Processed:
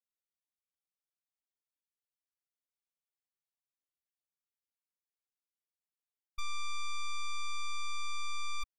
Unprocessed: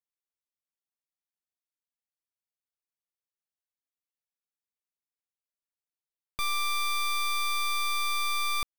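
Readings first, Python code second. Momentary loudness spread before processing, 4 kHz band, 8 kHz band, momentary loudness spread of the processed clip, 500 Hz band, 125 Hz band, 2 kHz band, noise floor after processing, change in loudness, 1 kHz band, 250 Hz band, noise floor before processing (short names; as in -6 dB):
2 LU, -11.0 dB, -10.5 dB, 2 LU, under -30 dB, n/a, -11.5 dB, under -85 dBFS, -11.5 dB, -11.0 dB, under -15 dB, under -85 dBFS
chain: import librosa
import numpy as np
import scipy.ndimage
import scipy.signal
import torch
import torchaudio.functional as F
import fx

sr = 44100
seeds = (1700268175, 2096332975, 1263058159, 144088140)

y = fx.spec_expand(x, sr, power=2.1)
y = fx.leveller(y, sr, passes=3)
y = y * 10.0 ** (-2.5 / 20.0)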